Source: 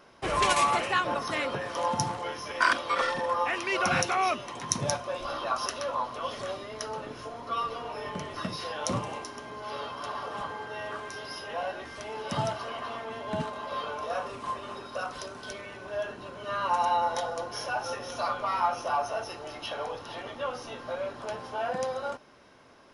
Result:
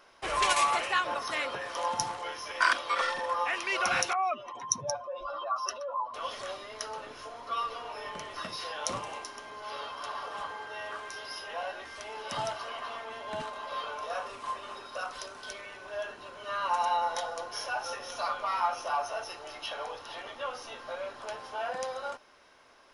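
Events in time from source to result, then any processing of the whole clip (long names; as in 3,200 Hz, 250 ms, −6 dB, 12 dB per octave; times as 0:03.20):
0:04.13–0:06.14: expanding power law on the bin magnitudes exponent 1.9
whole clip: parametric band 150 Hz −14 dB 2.8 octaves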